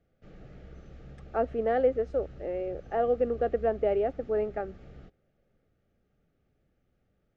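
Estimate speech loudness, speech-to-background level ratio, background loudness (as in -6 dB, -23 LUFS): -29.5 LUFS, 19.5 dB, -49.0 LUFS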